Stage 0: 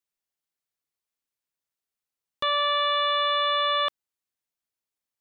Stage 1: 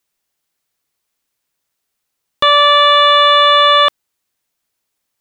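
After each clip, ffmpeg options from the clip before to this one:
ffmpeg -i in.wav -af "acontrast=87,volume=8dB" out.wav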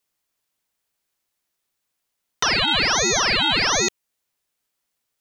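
ffmpeg -i in.wav -filter_complex "[0:a]acrossover=split=450|3000[link_01][link_02][link_03];[link_02]acompressor=threshold=-21dB:ratio=6[link_04];[link_01][link_04][link_03]amix=inputs=3:normalize=0,aeval=exprs='val(0)*sin(2*PI*1700*n/s+1700*0.85/1.3*sin(2*PI*1.3*n/s))':channel_layout=same,volume=-1dB" out.wav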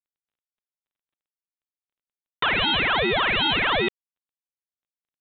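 ffmpeg -i in.wav -af "aresample=11025,asoftclip=type=hard:threshold=-17.5dB,aresample=44100,volume=2dB" -ar 8000 -c:a adpcm_g726 -b:a 40k out.wav

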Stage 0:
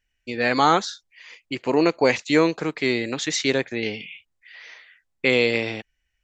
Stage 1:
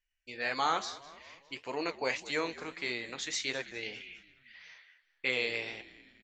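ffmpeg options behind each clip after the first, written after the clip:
ffmpeg -i in.wav -filter_complex "[0:a]equalizer=frequency=190:width=0.42:gain=-12.5,flanger=delay=8.4:depth=7.2:regen=-58:speed=1.7:shape=sinusoidal,asplit=5[link_01][link_02][link_03][link_04][link_05];[link_02]adelay=204,afreqshift=-68,volume=-18dB[link_06];[link_03]adelay=408,afreqshift=-136,volume=-23.8dB[link_07];[link_04]adelay=612,afreqshift=-204,volume=-29.7dB[link_08];[link_05]adelay=816,afreqshift=-272,volume=-35.5dB[link_09];[link_01][link_06][link_07][link_08][link_09]amix=inputs=5:normalize=0,volume=-5dB" out.wav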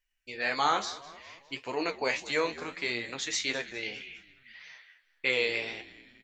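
ffmpeg -i in.wav -af "flanger=delay=7:depth=8.2:regen=55:speed=0.64:shape=triangular,volume=7.5dB" out.wav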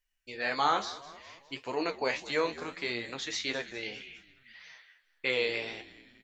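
ffmpeg -i in.wav -filter_complex "[0:a]acrossover=split=5800[link_01][link_02];[link_02]acompressor=threshold=-58dB:ratio=4:attack=1:release=60[link_03];[link_01][link_03]amix=inputs=2:normalize=0,equalizer=frequency=2300:width_type=o:width=0.73:gain=-3.5" out.wav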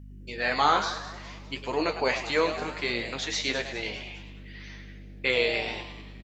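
ffmpeg -i in.wav -filter_complex "[0:a]aeval=exprs='val(0)+0.00398*(sin(2*PI*50*n/s)+sin(2*PI*2*50*n/s)/2+sin(2*PI*3*50*n/s)/3+sin(2*PI*4*50*n/s)/4+sin(2*PI*5*50*n/s)/5)':channel_layout=same,asplit=2[link_01][link_02];[link_02]asplit=5[link_03][link_04][link_05][link_06][link_07];[link_03]adelay=104,afreqshift=140,volume=-11dB[link_08];[link_04]adelay=208,afreqshift=280,volume=-17.2dB[link_09];[link_05]adelay=312,afreqshift=420,volume=-23.4dB[link_10];[link_06]adelay=416,afreqshift=560,volume=-29.6dB[link_11];[link_07]adelay=520,afreqshift=700,volume=-35.8dB[link_12];[link_08][link_09][link_10][link_11][link_12]amix=inputs=5:normalize=0[link_13];[link_01][link_13]amix=inputs=2:normalize=0,volume=4.5dB" out.wav

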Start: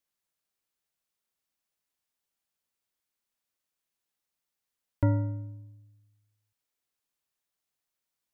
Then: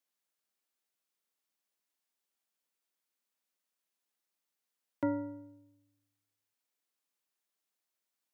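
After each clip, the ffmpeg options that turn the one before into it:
ffmpeg -i in.wav -af "highpass=frequency=190:width=0.5412,highpass=frequency=190:width=1.3066,volume=-1.5dB" out.wav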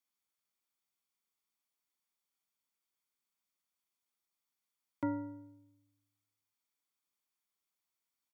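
ffmpeg -i in.wav -af "aecho=1:1:0.9:0.39,volume=-3dB" out.wav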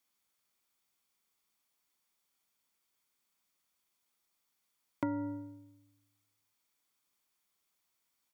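ffmpeg -i in.wav -af "acompressor=threshold=-39dB:ratio=6,volume=8dB" out.wav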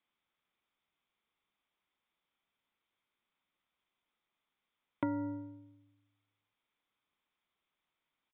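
ffmpeg -i in.wav -af "aresample=8000,aresample=44100" out.wav

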